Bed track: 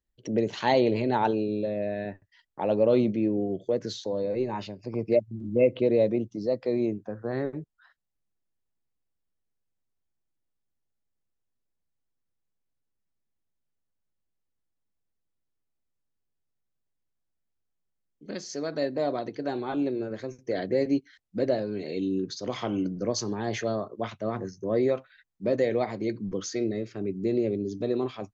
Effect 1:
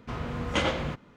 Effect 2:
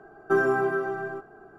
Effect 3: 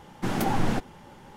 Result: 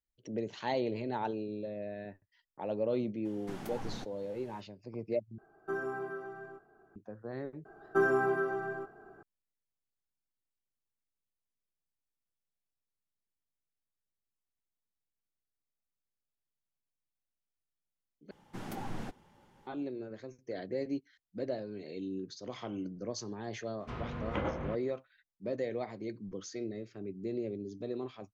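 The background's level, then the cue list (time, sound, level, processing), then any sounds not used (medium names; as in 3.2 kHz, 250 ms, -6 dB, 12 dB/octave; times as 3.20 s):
bed track -10.5 dB
3.25 s: add 3 -16.5 dB + tape noise reduction on one side only encoder only
5.38 s: replace with 2 -14 dB
7.65 s: add 2 -5 dB
18.31 s: replace with 3 -15 dB
23.80 s: add 1 -6.5 dB + low-pass that closes with the level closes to 1.3 kHz, closed at -25 dBFS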